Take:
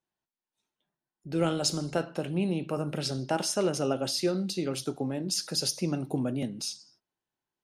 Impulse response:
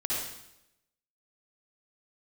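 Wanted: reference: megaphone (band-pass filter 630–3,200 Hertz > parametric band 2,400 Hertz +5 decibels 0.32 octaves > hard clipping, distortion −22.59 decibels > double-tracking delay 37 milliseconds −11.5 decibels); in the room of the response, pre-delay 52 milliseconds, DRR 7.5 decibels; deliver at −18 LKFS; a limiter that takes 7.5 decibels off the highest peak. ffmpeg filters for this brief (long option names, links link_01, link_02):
-filter_complex "[0:a]alimiter=limit=-22dB:level=0:latency=1,asplit=2[link_01][link_02];[1:a]atrim=start_sample=2205,adelay=52[link_03];[link_02][link_03]afir=irnorm=-1:irlink=0,volume=-14dB[link_04];[link_01][link_04]amix=inputs=2:normalize=0,highpass=630,lowpass=3200,equalizer=frequency=2400:width_type=o:width=0.32:gain=5,asoftclip=type=hard:threshold=-29.5dB,asplit=2[link_05][link_06];[link_06]adelay=37,volume=-11.5dB[link_07];[link_05][link_07]amix=inputs=2:normalize=0,volume=22dB"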